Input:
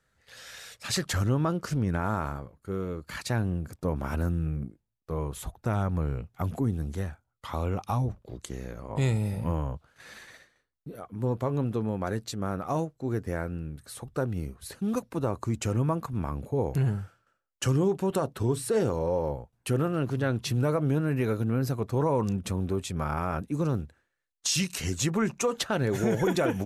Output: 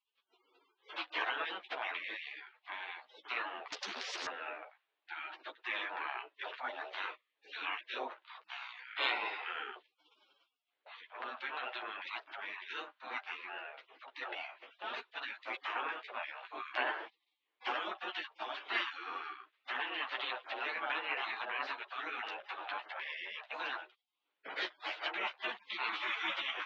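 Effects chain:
gate on every frequency bin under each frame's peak −30 dB weak
in parallel at −1.5 dB: downward compressor, threshold −59 dBFS, peak gain reduction 20 dB
on the sum: multi-voice chorus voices 6, 0.15 Hz, delay 12 ms, depth 4.9 ms
single-sideband voice off tune +72 Hz 210–3,500 Hz
0:03.72–0:04.27: every bin compressed towards the loudest bin 10 to 1
level +14.5 dB

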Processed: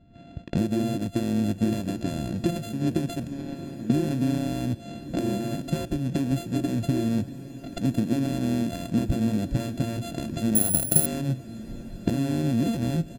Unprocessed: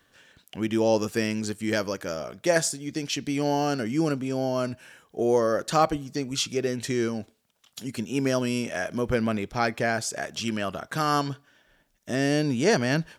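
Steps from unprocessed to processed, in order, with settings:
samples sorted by size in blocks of 64 samples
camcorder AGC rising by 25 dB per second
0:03.27–0:03.90: noise gate −18 dBFS, range −22 dB
low-pass that shuts in the quiet parts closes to 2,600 Hz, open at −22.5 dBFS
comb filter 1.2 ms, depth 89%
downward compressor 6 to 1, threshold −30 dBFS, peak gain reduction 15.5 dB
low shelf with overshoot 560 Hz +13.5 dB, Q 3
feedback delay with all-pass diffusion 1,221 ms, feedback 46%, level −13 dB
0:10.55–0:11.06: bad sample-rate conversion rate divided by 4×, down none, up zero stuff
level −3.5 dB

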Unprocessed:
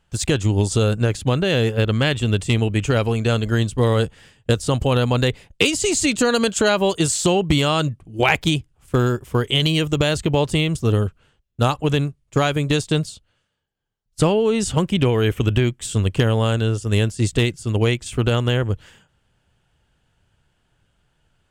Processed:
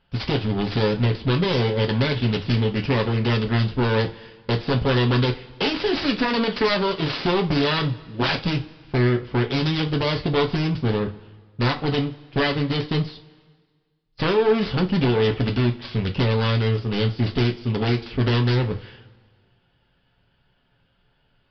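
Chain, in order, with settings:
phase distortion by the signal itself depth 0.63 ms
parametric band 75 Hz −4 dB 1.4 octaves
hard clipping −18 dBFS, distortion −8 dB
coupled-rooms reverb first 0.24 s, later 1.6 s, from −21 dB, DRR 3 dB
downsampling to 11,025 Hz

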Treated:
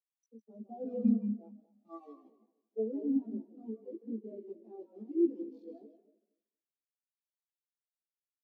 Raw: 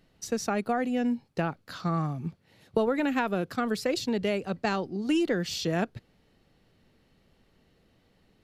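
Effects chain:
adaptive Wiener filter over 15 samples
high-shelf EQ 6,700 Hz +9 dB
treble cut that deepens with the level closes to 2,300 Hz, closed at −24.5 dBFS
bit reduction 5 bits
brickwall limiter −23.5 dBFS, peak gain reduction 11.5 dB
parametric band 1,500 Hz −10 dB 1.2 octaves
echo with shifted repeats 157 ms, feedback 49%, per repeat −37 Hz, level −4 dB
harmonic and percussive parts rebalanced harmonic +4 dB
Chebyshev high-pass filter 190 Hz, order 10
double-tracking delay 18 ms −2 dB
bucket-brigade delay 232 ms, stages 4,096, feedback 48%, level −8 dB
every bin expanded away from the loudest bin 2.5 to 1
level −7 dB

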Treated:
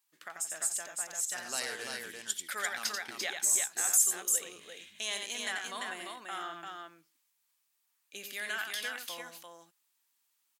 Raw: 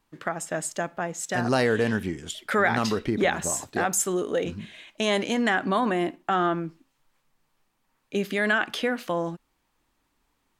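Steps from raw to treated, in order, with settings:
first difference
0:02.08–0:03.86: transient designer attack +3 dB, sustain −8 dB
multi-tap delay 88/344 ms −5.5/−4 dB

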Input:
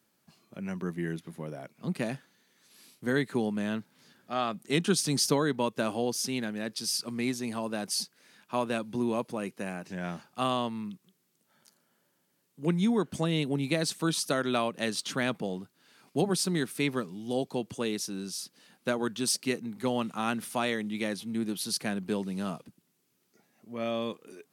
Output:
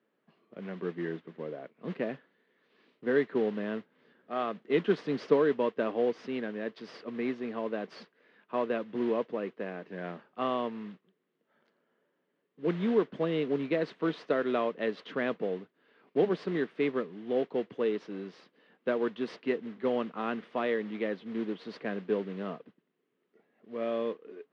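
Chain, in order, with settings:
noise that follows the level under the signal 10 dB
loudspeaker in its box 250–2,600 Hz, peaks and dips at 450 Hz +7 dB, 840 Hz −6 dB, 1,400 Hz −4 dB, 2,400 Hz −6 dB

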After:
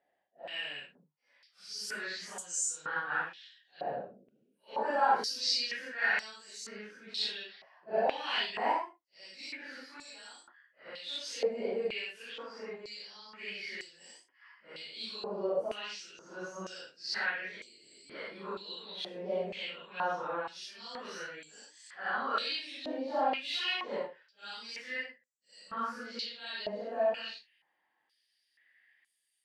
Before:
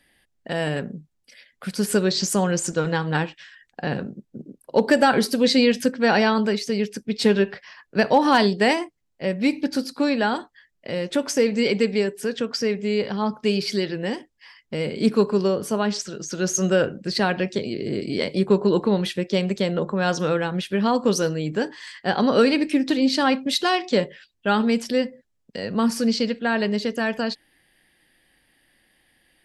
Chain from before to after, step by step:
random phases in long frames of 200 ms
band-pass on a step sequencer 2.1 Hz 690–7,400 Hz

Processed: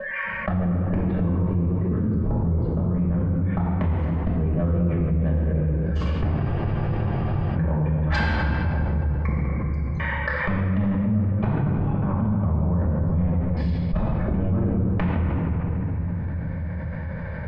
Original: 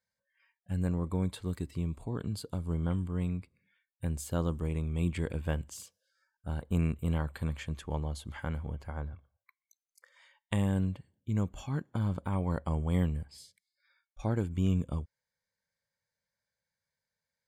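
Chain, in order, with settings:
slices reordered back to front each 238 ms, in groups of 2
low-pass filter 2,400 Hz 24 dB per octave
tilt shelving filter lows +7 dB, about 1,400 Hz
gate with flip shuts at −31 dBFS, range −27 dB
sine wavefolder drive 16 dB, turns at −25 dBFS
convolution reverb RT60 2.7 s, pre-delay 5 ms, DRR −6 dB
frozen spectrum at 0:06.41, 1.15 s
envelope flattener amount 70%
level −2.5 dB

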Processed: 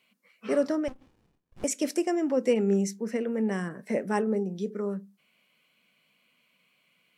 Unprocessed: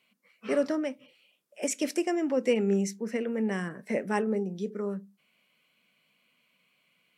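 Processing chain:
dynamic equaliser 2,500 Hz, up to −5 dB, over −50 dBFS, Q 1.2
0:00.88–0:01.64: windowed peak hold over 65 samples
level +1.5 dB

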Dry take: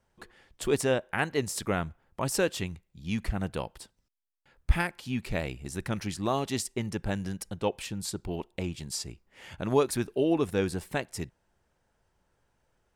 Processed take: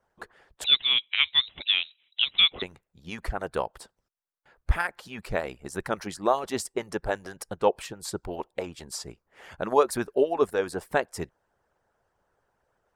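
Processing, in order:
harmonic and percussive parts rebalanced harmonic −17 dB
flat-topped bell 820 Hz +8.5 dB 2.4 octaves
0:00.64–0:02.62: voice inversion scrambler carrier 3,900 Hz

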